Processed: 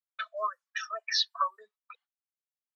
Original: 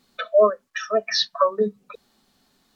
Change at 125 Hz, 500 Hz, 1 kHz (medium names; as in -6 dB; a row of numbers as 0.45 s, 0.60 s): no reading, -23.5 dB, -7.0 dB